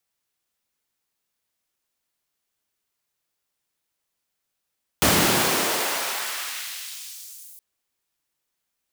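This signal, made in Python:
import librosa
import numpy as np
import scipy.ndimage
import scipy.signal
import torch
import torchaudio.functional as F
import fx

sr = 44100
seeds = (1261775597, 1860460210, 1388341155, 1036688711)

y = fx.riser_noise(sr, seeds[0], length_s=2.57, colour='pink', kind='highpass', start_hz=110.0, end_hz=11000.0, q=0.88, swell_db=-21.0, law='exponential')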